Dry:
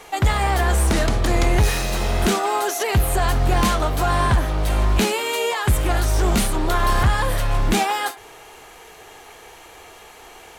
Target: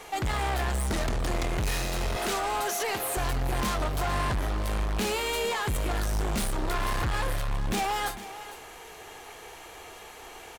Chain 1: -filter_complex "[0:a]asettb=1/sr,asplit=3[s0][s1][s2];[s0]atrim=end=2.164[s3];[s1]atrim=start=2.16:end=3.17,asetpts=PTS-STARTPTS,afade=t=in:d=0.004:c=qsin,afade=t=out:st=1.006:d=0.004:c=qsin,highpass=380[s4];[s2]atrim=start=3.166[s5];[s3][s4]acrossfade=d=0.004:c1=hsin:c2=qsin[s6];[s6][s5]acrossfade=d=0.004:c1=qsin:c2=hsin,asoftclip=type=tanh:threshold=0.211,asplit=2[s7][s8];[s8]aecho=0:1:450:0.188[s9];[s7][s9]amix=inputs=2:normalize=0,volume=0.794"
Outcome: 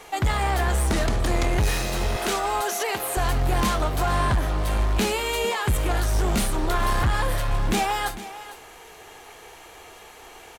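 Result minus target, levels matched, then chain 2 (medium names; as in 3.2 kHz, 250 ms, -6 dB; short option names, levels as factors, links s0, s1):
saturation: distortion -10 dB
-filter_complex "[0:a]asettb=1/sr,asplit=3[s0][s1][s2];[s0]atrim=end=2.164[s3];[s1]atrim=start=2.16:end=3.17,asetpts=PTS-STARTPTS,afade=t=in:d=0.004:c=qsin,afade=t=out:st=1.006:d=0.004:c=qsin,highpass=380[s4];[s2]atrim=start=3.166[s5];[s3][s4]acrossfade=d=0.004:c1=hsin:c2=qsin[s6];[s6][s5]acrossfade=d=0.004:c1=qsin:c2=hsin,asoftclip=type=tanh:threshold=0.0668,asplit=2[s7][s8];[s8]aecho=0:1:450:0.188[s9];[s7][s9]amix=inputs=2:normalize=0,volume=0.794"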